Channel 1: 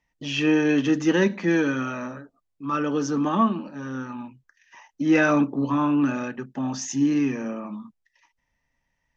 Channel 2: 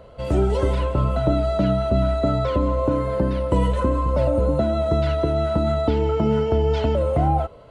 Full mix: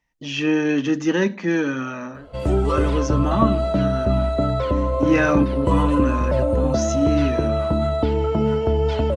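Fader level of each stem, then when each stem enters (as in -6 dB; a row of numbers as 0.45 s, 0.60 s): +0.5 dB, 0.0 dB; 0.00 s, 2.15 s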